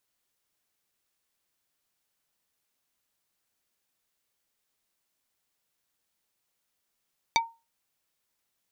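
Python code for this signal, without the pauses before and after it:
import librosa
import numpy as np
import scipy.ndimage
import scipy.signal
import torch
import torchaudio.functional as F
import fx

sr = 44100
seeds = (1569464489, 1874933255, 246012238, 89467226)

y = fx.strike_wood(sr, length_s=0.45, level_db=-18.0, body='plate', hz=918.0, decay_s=0.27, tilt_db=1.0, modes=5)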